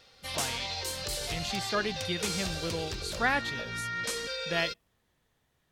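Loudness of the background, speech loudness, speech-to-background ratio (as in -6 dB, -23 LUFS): -34.0 LUFS, -34.0 LUFS, 0.0 dB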